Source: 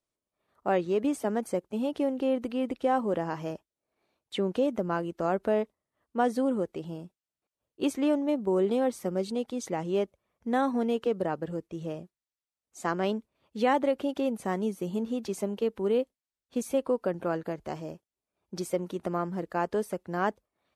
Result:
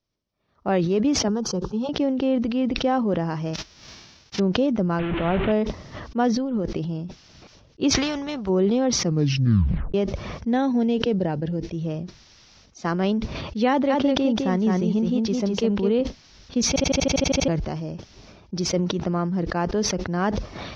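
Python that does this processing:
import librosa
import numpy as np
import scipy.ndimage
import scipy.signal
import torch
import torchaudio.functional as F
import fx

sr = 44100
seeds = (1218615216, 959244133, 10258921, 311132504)

y = fx.fixed_phaser(x, sr, hz=420.0, stages=8, at=(1.28, 1.89))
y = fx.envelope_flatten(y, sr, power=0.1, at=(3.53, 4.38), fade=0.02)
y = fx.delta_mod(y, sr, bps=16000, step_db=-27.0, at=(4.99, 5.52))
y = fx.over_compress(y, sr, threshold_db=-33.0, ratio=-1.0, at=(6.36, 6.77))
y = fx.spectral_comp(y, sr, ratio=2.0, at=(7.92, 8.48), fade=0.02)
y = fx.peak_eq(y, sr, hz=1200.0, db=-12.5, octaves=0.33, at=(10.51, 11.72))
y = fx.echo_single(y, sr, ms=209, db=-5.5, at=(13.89, 16.0), fade=0.02)
y = fx.edit(y, sr, fx.tape_stop(start_s=9.02, length_s=0.92),
    fx.stutter_over(start_s=16.68, slice_s=0.08, count=10), tone=tone)
y = scipy.signal.sosfilt(scipy.signal.ellip(4, 1.0, 40, 5700.0, 'lowpass', fs=sr, output='sos'), y)
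y = fx.bass_treble(y, sr, bass_db=11, treble_db=8)
y = fx.sustainer(y, sr, db_per_s=37.0)
y = y * librosa.db_to_amplitude(3.0)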